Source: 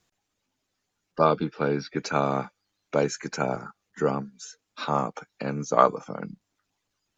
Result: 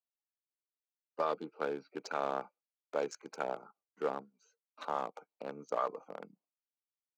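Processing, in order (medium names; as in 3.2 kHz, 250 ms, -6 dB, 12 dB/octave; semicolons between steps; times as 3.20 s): local Wiener filter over 25 samples; gate with hold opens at -53 dBFS; high-pass 460 Hz 12 dB/octave; peak limiter -14 dBFS, peak gain reduction 10.5 dB; trim -6 dB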